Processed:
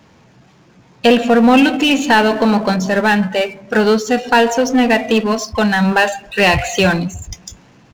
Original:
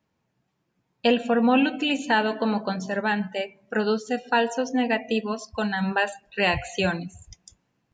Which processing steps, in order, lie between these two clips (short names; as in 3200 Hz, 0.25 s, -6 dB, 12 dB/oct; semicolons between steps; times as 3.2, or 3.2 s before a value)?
downsampling 16000 Hz; power-law curve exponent 0.7; gain +7.5 dB